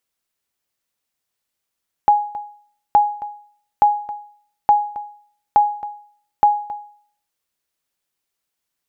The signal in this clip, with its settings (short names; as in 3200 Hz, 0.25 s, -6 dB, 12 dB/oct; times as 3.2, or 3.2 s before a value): sonar ping 830 Hz, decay 0.53 s, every 0.87 s, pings 6, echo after 0.27 s, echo -17.5 dB -5.5 dBFS